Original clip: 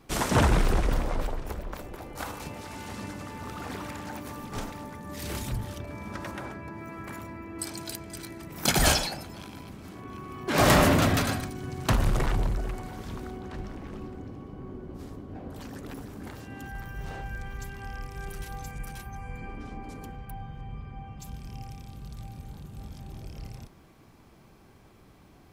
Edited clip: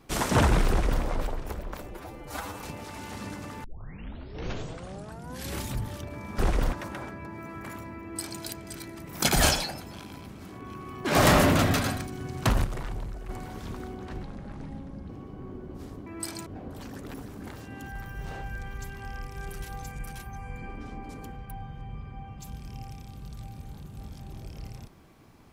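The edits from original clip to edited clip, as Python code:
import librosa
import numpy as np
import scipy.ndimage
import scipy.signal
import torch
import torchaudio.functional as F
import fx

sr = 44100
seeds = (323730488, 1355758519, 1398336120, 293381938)

y = fx.edit(x, sr, fx.duplicate(start_s=0.69, length_s=0.34, to_s=6.16),
    fx.stretch_span(start_s=1.91, length_s=0.46, factor=1.5),
    fx.tape_start(start_s=3.41, length_s=1.97),
    fx.duplicate(start_s=7.45, length_s=0.4, to_s=15.26),
    fx.clip_gain(start_s=12.07, length_s=0.65, db=-8.5),
    fx.speed_span(start_s=13.66, length_s=0.63, speed=0.73), tone=tone)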